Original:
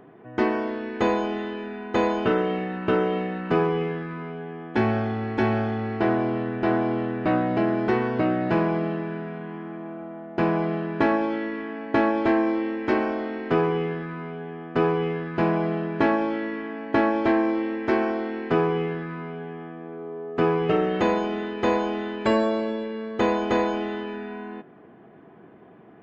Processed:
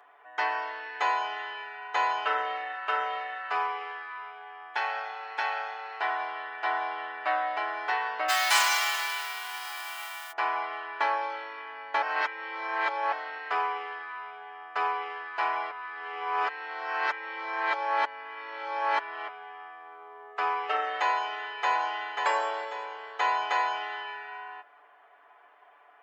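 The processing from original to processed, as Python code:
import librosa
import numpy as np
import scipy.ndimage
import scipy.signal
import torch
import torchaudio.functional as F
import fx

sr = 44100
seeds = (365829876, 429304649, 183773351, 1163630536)

y = fx.low_shelf(x, sr, hz=260.0, db=-8.5, at=(2.73, 6.64))
y = fx.envelope_flatten(y, sr, power=0.3, at=(8.28, 10.31), fade=0.02)
y = fx.echo_throw(y, sr, start_s=21.2, length_s=0.9, ms=540, feedback_pct=40, wet_db=-5.0)
y = fx.edit(y, sr, fx.reverse_span(start_s=12.02, length_s=1.1),
    fx.reverse_span(start_s=15.71, length_s=3.57), tone=tone)
y = scipy.signal.sosfilt(scipy.signal.butter(4, 770.0, 'highpass', fs=sr, output='sos'), y)
y = y + 0.62 * np.pad(y, (int(6.9 * sr / 1000.0), 0))[:len(y)]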